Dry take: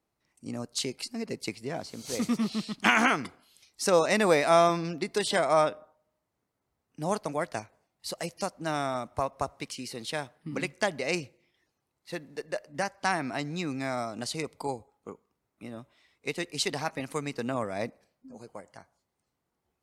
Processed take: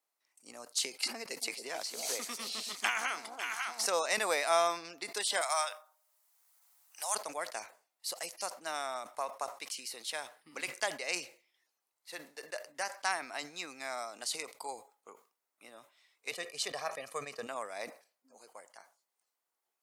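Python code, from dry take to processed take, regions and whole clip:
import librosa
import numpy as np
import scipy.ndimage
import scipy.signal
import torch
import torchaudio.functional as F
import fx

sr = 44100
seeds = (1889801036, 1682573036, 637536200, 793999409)

y = fx.chain(x, sr, fx.low_shelf(hz=140.0, db=-6.0),
    fx.echo_alternate(ms=274, hz=820.0, feedback_pct=54, wet_db=-9.5),
    fx.band_squash(depth_pct=100), at=(1.03, 3.86))
y = fx.chain(y, sr, fx.highpass(hz=690.0, slope=24),
    fx.high_shelf(hz=4100.0, db=11.5),
    fx.band_squash(depth_pct=40), at=(5.41, 7.15))
y = fx.chain(y, sr, fx.tilt_eq(slope=-2.5),
    fx.comb(ms=1.7, depth=0.62), at=(16.31, 17.47))
y = scipy.signal.sosfilt(scipy.signal.butter(2, 670.0, 'highpass', fs=sr, output='sos'), y)
y = fx.high_shelf(y, sr, hz=6100.0, db=9.5)
y = fx.sustainer(y, sr, db_per_s=150.0)
y = y * librosa.db_to_amplitude(-5.0)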